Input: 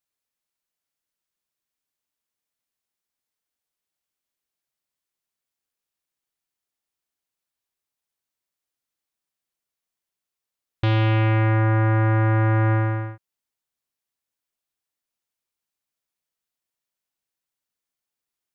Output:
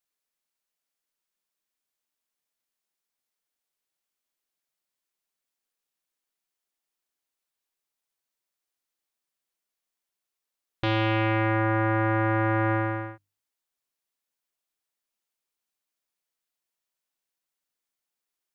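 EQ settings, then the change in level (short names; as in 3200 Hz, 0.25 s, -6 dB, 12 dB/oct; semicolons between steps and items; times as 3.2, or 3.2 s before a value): bell 87 Hz -14 dB 0.96 oct; notches 50/100/150/200/250/300 Hz; 0.0 dB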